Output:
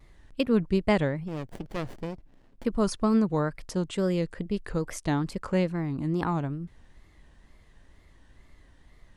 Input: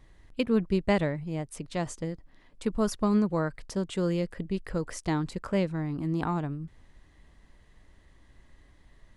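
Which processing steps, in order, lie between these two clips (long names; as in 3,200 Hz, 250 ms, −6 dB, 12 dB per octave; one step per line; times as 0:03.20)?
tape wow and flutter 120 cents
0:01.28–0:02.65: windowed peak hold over 33 samples
level +1.5 dB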